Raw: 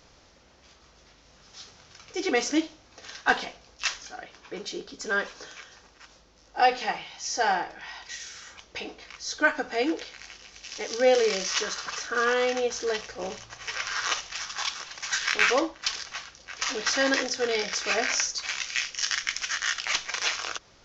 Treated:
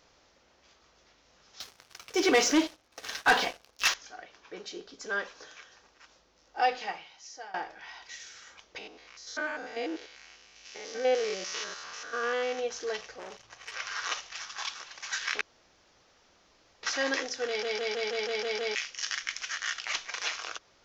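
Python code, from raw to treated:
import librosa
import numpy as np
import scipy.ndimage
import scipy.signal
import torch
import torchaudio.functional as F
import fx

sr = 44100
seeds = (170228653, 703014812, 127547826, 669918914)

y = fx.leveller(x, sr, passes=3, at=(1.6, 3.94))
y = fx.spec_steps(y, sr, hold_ms=100, at=(8.78, 12.59))
y = fx.transformer_sat(y, sr, knee_hz=2600.0, at=(13.19, 13.72))
y = fx.edit(y, sr, fx.fade_out_to(start_s=6.75, length_s=0.79, floor_db=-22.5),
    fx.room_tone_fill(start_s=15.41, length_s=1.42),
    fx.stutter_over(start_s=17.47, slice_s=0.16, count=8), tone=tone)
y = fx.bass_treble(y, sr, bass_db=-7, treble_db=-2)
y = y * librosa.db_to_amplitude(-5.0)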